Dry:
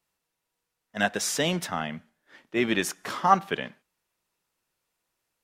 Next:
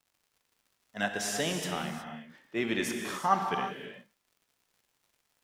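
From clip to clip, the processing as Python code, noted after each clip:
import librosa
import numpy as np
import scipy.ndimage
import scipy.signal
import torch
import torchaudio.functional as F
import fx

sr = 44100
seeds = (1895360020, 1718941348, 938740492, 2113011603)

y = fx.dmg_crackle(x, sr, seeds[0], per_s=150.0, level_db=-49.0)
y = fx.rev_gated(y, sr, seeds[1], gate_ms=390, shape='flat', drr_db=3.0)
y = y * 10.0 ** (-6.5 / 20.0)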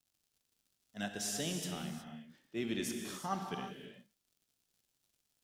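y = fx.graphic_eq(x, sr, hz=(500, 1000, 2000), db=(-5, -9, -8))
y = y * 10.0 ** (-3.0 / 20.0)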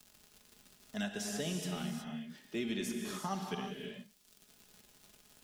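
y = x + 0.5 * np.pad(x, (int(4.8 * sr / 1000.0), 0))[:len(x)]
y = fx.band_squash(y, sr, depth_pct=70)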